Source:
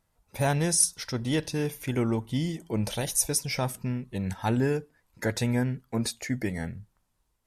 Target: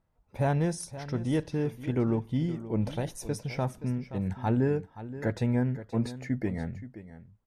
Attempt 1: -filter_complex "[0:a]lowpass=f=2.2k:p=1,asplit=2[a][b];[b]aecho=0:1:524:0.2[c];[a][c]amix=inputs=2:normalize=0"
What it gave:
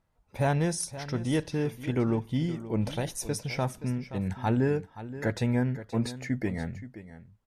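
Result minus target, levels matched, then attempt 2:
2000 Hz band +3.5 dB
-filter_complex "[0:a]lowpass=f=990:p=1,asplit=2[a][b];[b]aecho=0:1:524:0.2[c];[a][c]amix=inputs=2:normalize=0"

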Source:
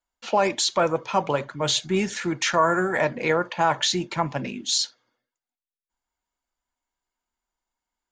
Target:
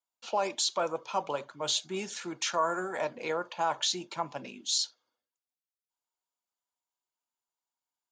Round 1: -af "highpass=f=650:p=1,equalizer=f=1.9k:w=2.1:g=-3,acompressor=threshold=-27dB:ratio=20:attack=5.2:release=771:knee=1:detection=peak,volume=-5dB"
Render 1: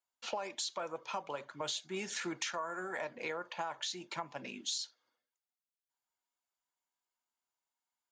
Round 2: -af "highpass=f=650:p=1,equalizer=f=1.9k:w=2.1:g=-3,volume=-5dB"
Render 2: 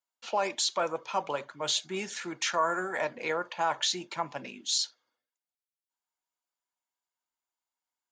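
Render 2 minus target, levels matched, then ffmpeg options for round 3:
2000 Hz band +3.5 dB
-af "highpass=f=650:p=1,equalizer=f=1.9k:w=2.1:g=-10,volume=-5dB"

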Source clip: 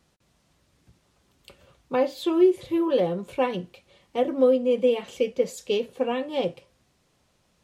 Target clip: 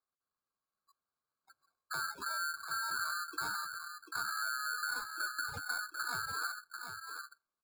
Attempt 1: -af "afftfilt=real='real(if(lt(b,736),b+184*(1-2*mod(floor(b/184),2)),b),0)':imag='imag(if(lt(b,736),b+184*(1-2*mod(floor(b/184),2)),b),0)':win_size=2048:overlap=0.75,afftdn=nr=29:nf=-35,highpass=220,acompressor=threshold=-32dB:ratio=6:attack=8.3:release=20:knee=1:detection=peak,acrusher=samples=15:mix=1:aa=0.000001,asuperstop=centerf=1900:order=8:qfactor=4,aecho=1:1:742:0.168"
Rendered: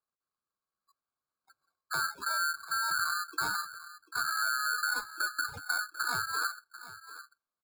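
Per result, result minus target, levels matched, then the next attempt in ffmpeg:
compressor: peak gain reduction -6 dB; echo-to-direct -8.5 dB
-af "afftfilt=real='real(if(lt(b,736),b+184*(1-2*mod(floor(b/184),2)),b),0)':imag='imag(if(lt(b,736),b+184*(1-2*mod(floor(b/184),2)),b),0)':win_size=2048:overlap=0.75,afftdn=nr=29:nf=-35,highpass=220,acompressor=threshold=-39.5dB:ratio=6:attack=8.3:release=20:knee=1:detection=peak,acrusher=samples=15:mix=1:aa=0.000001,asuperstop=centerf=1900:order=8:qfactor=4,aecho=1:1:742:0.168"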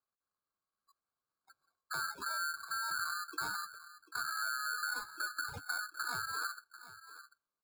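echo-to-direct -8.5 dB
-af "afftfilt=real='real(if(lt(b,736),b+184*(1-2*mod(floor(b/184),2)),b),0)':imag='imag(if(lt(b,736),b+184*(1-2*mod(floor(b/184),2)),b),0)':win_size=2048:overlap=0.75,afftdn=nr=29:nf=-35,highpass=220,acompressor=threshold=-39.5dB:ratio=6:attack=8.3:release=20:knee=1:detection=peak,acrusher=samples=15:mix=1:aa=0.000001,asuperstop=centerf=1900:order=8:qfactor=4,aecho=1:1:742:0.447"

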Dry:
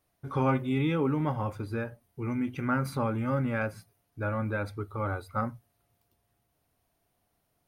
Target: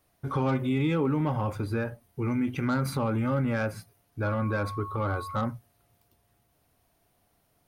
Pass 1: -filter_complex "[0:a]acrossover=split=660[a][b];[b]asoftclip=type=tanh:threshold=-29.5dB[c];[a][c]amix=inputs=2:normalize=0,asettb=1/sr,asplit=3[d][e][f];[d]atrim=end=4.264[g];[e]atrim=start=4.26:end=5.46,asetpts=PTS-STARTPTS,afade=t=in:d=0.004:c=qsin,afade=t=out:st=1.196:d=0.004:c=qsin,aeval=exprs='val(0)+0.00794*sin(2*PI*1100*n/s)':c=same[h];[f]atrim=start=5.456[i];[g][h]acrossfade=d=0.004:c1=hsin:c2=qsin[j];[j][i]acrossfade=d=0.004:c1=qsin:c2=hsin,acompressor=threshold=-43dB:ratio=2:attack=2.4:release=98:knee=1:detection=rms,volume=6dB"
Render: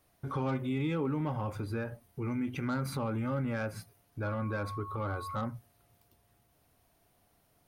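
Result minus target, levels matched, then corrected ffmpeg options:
compressor: peak gain reduction +6 dB
-filter_complex "[0:a]acrossover=split=660[a][b];[b]asoftclip=type=tanh:threshold=-29.5dB[c];[a][c]amix=inputs=2:normalize=0,asettb=1/sr,asplit=3[d][e][f];[d]atrim=end=4.264[g];[e]atrim=start=4.26:end=5.46,asetpts=PTS-STARTPTS,afade=t=in:d=0.004:c=qsin,afade=t=out:st=1.196:d=0.004:c=qsin,aeval=exprs='val(0)+0.00794*sin(2*PI*1100*n/s)':c=same[h];[f]atrim=start=5.456[i];[g][h]acrossfade=d=0.004:c1=hsin:c2=qsin[j];[j][i]acrossfade=d=0.004:c1=qsin:c2=hsin,acompressor=threshold=-31dB:ratio=2:attack=2.4:release=98:knee=1:detection=rms,volume=6dB"

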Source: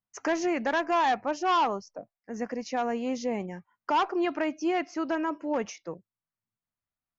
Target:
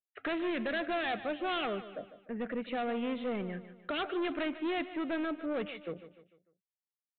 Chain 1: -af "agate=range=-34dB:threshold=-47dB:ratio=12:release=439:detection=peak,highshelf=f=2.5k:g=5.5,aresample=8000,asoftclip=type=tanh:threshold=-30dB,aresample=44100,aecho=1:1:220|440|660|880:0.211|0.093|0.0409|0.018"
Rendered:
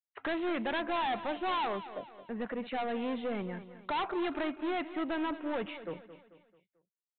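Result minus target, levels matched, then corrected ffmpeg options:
echo 71 ms late; 1000 Hz band +4.0 dB
-af "agate=range=-34dB:threshold=-47dB:ratio=12:release=439:detection=peak,asuperstop=centerf=950:order=4:qfactor=1.9,highshelf=f=2.5k:g=5.5,aresample=8000,asoftclip=type=tanh:threshold=-30dB,aresample=44100,aecho=1:1:149|298|447|596:0.211|0.093|0.0409|0.018"

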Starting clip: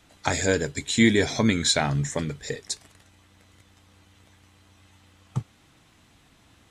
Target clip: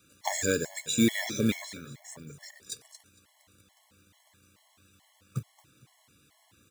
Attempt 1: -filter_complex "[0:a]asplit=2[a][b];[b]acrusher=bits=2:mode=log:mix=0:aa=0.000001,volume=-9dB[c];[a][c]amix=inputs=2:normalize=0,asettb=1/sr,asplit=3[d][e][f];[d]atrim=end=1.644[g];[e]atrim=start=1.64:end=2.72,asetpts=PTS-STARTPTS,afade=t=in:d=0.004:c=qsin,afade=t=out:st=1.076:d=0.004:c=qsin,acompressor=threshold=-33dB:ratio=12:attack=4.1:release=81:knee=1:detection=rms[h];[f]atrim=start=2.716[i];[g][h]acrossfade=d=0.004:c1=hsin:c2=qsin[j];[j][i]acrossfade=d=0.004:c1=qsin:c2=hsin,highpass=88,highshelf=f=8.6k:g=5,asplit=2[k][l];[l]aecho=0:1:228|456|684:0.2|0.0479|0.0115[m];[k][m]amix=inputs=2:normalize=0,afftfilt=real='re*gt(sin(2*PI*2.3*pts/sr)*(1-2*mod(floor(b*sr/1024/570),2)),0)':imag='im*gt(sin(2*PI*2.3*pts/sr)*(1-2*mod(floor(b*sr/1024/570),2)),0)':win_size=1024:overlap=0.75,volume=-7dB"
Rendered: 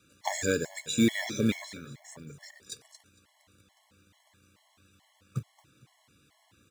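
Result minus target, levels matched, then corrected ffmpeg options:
8000 Hz band -3.5 dB
-filter_complex "[0:a]asplit=2[a][b];[b]acrusher=bits=2:mode=log:mix=0:aa=0.000001,volume=-9dB[c];[a][c]amix=inputs=2:normalize=0,asettb=1/sr,asplit=3[d][e][f];[d]atrim=end=1.644[g];[e]atrim=start=1.64:end=2.72,asetpts=PTS-STARTPTS,afade=t=in:d=0.004:c=qsin,afade=t=out:st=1.076:d=0.004:c=qsin,acompressor=threshold=-33dB:ratio=12:attack=4.1:release=81:knee=1:detection=rms[h];[f]atrim=start=2.716[i];[g][h]acrossfade=d=0.004:c1=hsin:c2=qsin[j];[j][i]acrossfade=d=0.004:c1=qsin:c2=hsin,highpass=88,highshelf=f=8.6k:g=14,asplit=2[k][l];[l]aecho=0:1:228|456|684:0.2|0.0479|0.0115[m];[k][m]amix=inputs=2:normalize=0,afftfilt=real='re*gt(sin(2*PI*2.3*pts/sr)*(1-2*mod(floor(b*sr/1024/570),2)),0)':imag='im*gt(sin(2*PI*2.3*pts/sr)*(1-2*mod(floor(b*sr/1024/570),2)),0)':win_size=1024:overlap=0.75,volume=-7dB"

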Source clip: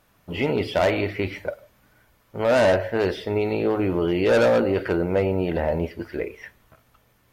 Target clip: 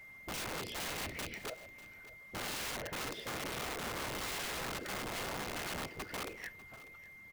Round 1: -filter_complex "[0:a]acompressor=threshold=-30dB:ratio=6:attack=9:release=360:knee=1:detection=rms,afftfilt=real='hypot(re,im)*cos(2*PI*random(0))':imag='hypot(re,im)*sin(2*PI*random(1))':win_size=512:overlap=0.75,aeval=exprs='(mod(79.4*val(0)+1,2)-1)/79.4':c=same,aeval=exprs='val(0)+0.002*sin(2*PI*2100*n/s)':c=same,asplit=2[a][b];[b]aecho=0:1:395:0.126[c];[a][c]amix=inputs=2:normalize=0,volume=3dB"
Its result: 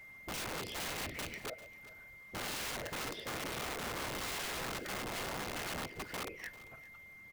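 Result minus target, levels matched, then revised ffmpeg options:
echo 0.201 s early
-filter_complex "[0:a]acompressor=threshold=-30dB:ratio=6:attack=9:release=360:knee=1:detection=rms,afftfilt=real='hypot(re,im)*cos(2*PI*random(0))':imag='hypot(re,im)*sin(2*PI*random(1))':win_size=512:overlap=0.75,aeval=exprs='(mod(79.4*val(0)+1,2)-1)/79.4':c=same,aeval=exprs='val(0)+0.002*sin(2*PI*2100*n/s)':c=same,asplit=2[a][b];[b]aecho=0:1:596:0.126[c];[a][c]amix=inputs=2:normalize=0,volume=3dB"

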